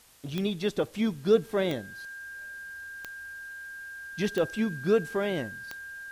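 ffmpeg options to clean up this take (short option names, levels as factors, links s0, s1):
-af "adeclick=t=4,bandreject=f=1600:w=30,agate=range=0.0891:threshold=0.0178"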